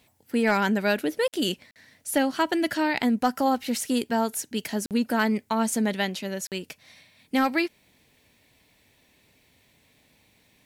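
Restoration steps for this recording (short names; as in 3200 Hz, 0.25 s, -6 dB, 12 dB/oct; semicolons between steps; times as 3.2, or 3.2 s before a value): clip repair -13 dBFS; interpolate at 1.28/1.71/4.86/6.47, 48 ms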